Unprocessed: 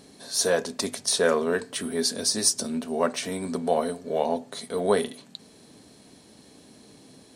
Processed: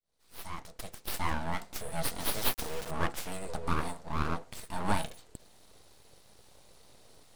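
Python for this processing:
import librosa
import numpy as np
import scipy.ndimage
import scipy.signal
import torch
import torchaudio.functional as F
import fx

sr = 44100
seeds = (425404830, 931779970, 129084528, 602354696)

y = fx.fade_in_head(x, sr, length_s=1.85)
y = np.abs(y)
y = fx.quant_dither(y, sr, seeds[0], bits=6, dither='none', at=(2.2, 2.91))
y = y * 10.0 ** (-4.5 / 20.0)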